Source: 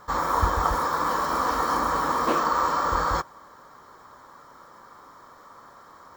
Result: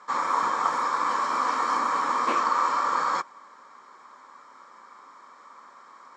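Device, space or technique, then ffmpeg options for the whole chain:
television speaker: -af "highpass=f=220:w=0.5412,highpass=f=220:w=1.3066,equalizer=f=320:t=q:w=4:g=-5,equalizer=f=470:t=q:w=4:g=-4,equalizer=f=670:t=q:w=4:g=-4,equalizer=f=1100:t=q:w=4:g=4,equalizer=f=2300:t=q:w=4:g=9,equalizer=f=7800:t=q:w=4:g=3,lowpass=f=8000:w=0.5412,lowpass=f=8000:w=1.3066,volume=0.75"

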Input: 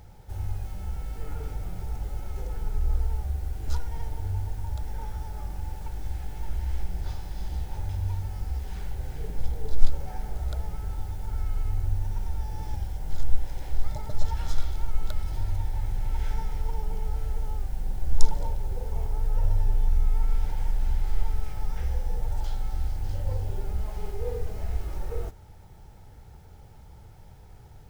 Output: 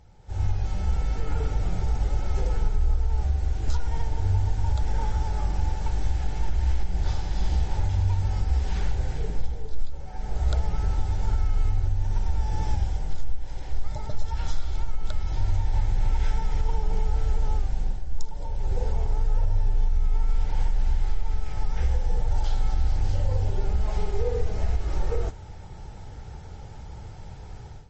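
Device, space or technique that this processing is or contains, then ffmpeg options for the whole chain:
low-bitrate web radio: -af "dynaudnorm=f=220:g=3:m=5.31,alimiter=limit=0.398:level=0:latency=1:release=167,volume=0.531" -ar 32000 -c:a libmp3lame -b:a 32k

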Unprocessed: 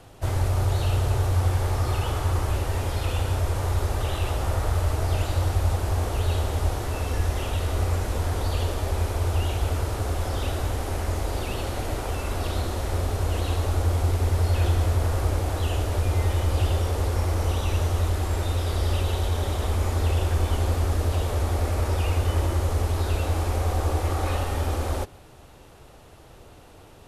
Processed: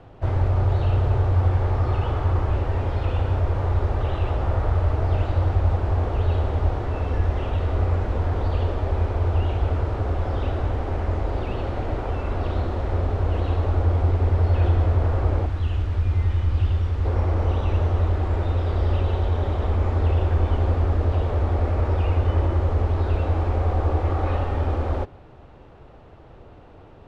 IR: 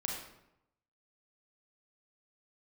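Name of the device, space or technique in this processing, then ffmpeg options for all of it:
phone in a pocket: -filter_complex "[0:a]lowpass=3500,highshelf=f=2200:g=-11,asettb=1/sr,asplit=3[s0][s1][s2];[s0]atrim=end=15.464[s3];[s1]atrim=start=15.46:end=17.05,asetpts=PTS-STARTPTS,afade=t=in:d=0.004:c=qsin,afade=t=out:st=1.586:d=0.004:c=qsin,equalizer=f=570:t=o:w=1.9:g=-12.5[s4];[s2]atrim=start=17.046[s5];[s3][s4]acrossfade=d=0.004:c1=hsin:c2=qsin[s6];[s6][s5]acrossfade=d=0.004:c1=qsin:c2=hsin,volume=1.41"

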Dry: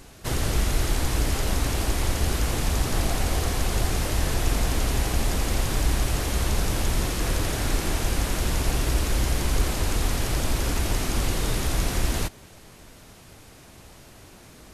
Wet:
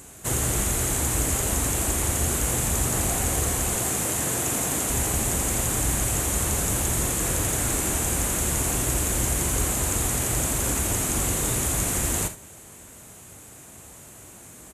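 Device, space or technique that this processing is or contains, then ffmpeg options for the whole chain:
budget condenser microphone: -filter_complex "[0:a]highpass=62,highshelf=f=6100:t=q:w=3:g=6.5,asettb=1/sr,asplit=3[s0][s1][s2];[s0]atrim=end=3.764[s3];[s1]atrim=start=3.76:end=4.9,asetpts=PTS-STARTPTS,afade=t=in:d=0.004:c=qsin,afade=t=out:st=1.136:d=0.004:c=qsin,highpass=130[s4];[s2]atrim=start=4.896[s5];[s3][s4]acrossfade=d=0.004:c1=hsin:c2=qsin[s6];[s6][s5]acrossfade=d=0.004:c1=qsin:c2=hsin,aecho=1:1:41|74:0.266|0.188"

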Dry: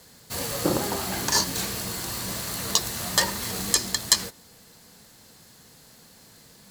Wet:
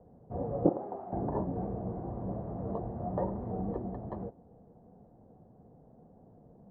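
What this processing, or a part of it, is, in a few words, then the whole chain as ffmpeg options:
under water: -filter_complex "[0:a]lowpass=f=690:w=0.5412,lowpass=f=690:w=1.3066,equalizer=f=730:t=o:w=0.22:g=7.5,asettb=1/sr,asplit=3[s0][s1][s2];[s0]atrim=end=0.694[s3];[s1]atrim=start=0.69:end=1.13,asetpts=PTS-STARTPTS,afade=t=in:d=0.004:c=qsin,afade=t=out:st=0.436:d=0.004:c=qsin,highpass=f=1200:p=1[s4];[s2]atrim=start=1.126[s5];[s3][s4]acrossfade=d=0.004:c1=hsin:c2=qsin[s6];[s6][s5]acrossfade=d=0.004:c1=qsin:c2=hsin"

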